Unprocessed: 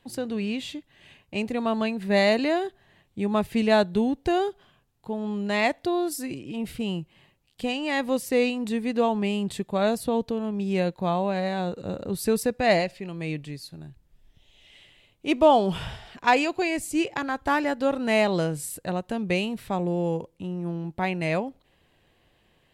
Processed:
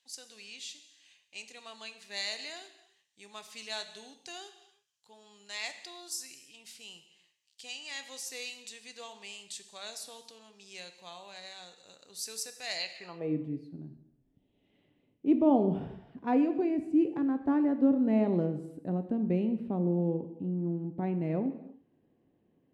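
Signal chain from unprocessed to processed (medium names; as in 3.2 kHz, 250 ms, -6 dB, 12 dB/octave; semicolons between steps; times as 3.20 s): band-pass sweep 6.1 kHz -> 260 Hz, 12.75–13.36 s; gated-style reverb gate 360 ms falling, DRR 8.5 dB; trim +3.5 dB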